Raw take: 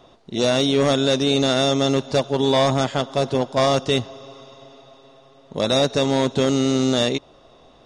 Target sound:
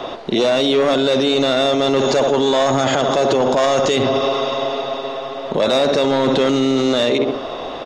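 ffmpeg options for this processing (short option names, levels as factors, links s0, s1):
-filter_complex "[0:a]acrossover=split=270 4400:gain=0.224 1 0.2[s0][s1][s2];[s0][s1][s2]amix=inputs=3:normalize=0,asoftclip=type=tanh:threshold=0.2,asettb=1/sr,asplit=3[s3][s4][s5];[s3]atrim=end=1.994[s6];[s4]atrim=start=1.99:end=3.96,asetpts=PTS-STARTPTS,afade=t=in:d=0.004:c=qsin,afade=t=out:st=1.966:d=0.004:c=qsin,equalizer=f=6700:w=5.9:g=14[s7];[s5]atrim=start=3.956[s8];[s6][s7]acrossfade=d=0.004:c1=hsin:c2=qsin[s9];[s9][s8]acrossfade=d=0.004:c1=qsin:c2=hsin,asplit=2[s10][s11];[s11]adelay=67,lowpass=f=1100:p=1,volume=0.299,asplit=2[s12][s13];[s13]adelay=67,lowpass=f=1100:p=1,volume=0.47,asplit=2[s14][s15];[s15]adelay=67,lowpass=f=1100:p=1,volume=0.47,asplit=2[s16][s17];[s17]adelay=67,lowpass=f=1100:p=1,volume=0.47,asplit=2[s18][s19];[s19]adelay=67,lowpass=f=1100:p=1,volume=0.47[s20];[s12][s14][s16][s18][s20]amix=inputs=5:normalize=0[s21];[s10][s21]amix=inputs=2:normalize=0,alimiter=level_in=42.2:limit=0.891:release=50:level=0:latency=1,volume=0.398"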